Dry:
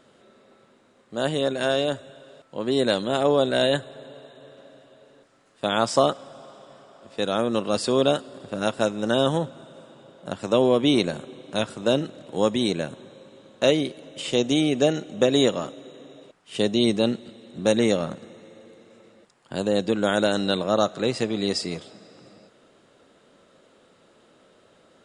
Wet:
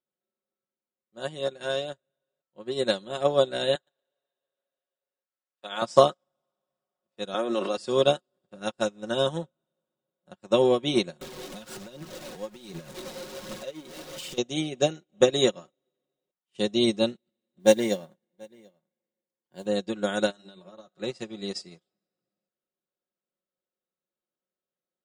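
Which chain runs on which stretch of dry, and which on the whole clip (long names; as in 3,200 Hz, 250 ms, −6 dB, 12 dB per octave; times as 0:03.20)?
0:03.75–0:05.82: meter weighting curve A + feedback echo at a low word length 117 ms, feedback 35%, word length 8 bits, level −11 dB
0:07.34–0:07.77: high-pass filter 260 Hz 24 dB per octave + high-shelf EQ 6,100 Hz −6 dB + envelope flattener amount 100%
0:11.21–0:14.38: converter with a step at zero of −22 dBFS + downward compressor 5 to 1, threshold −25 dBFS + phase shifter 1.3 Hz, delay 4.5 ms, feedback 34%
0:17.59–0:19.66: single-tap delay 736 ms −11 dB + noise that follows the level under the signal 25 dB + notch comb filter 1,300 Hz
0:20.30–0:20.87: mains-hum notches 50/100/150/200/250/300/350/400/450 Hz + downward compressor 12 to 1, threshold −23 dBFS + notch comb filter 250 Hz
whole clip: comb filter 5.5 ms, depth 54%; dynamic equaliser 5,500 Hz, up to +4 dB, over −41 dBFS, Q 1.2; expander for the loud parts 2.5 to 1, over −41 dBFS; level +2 dB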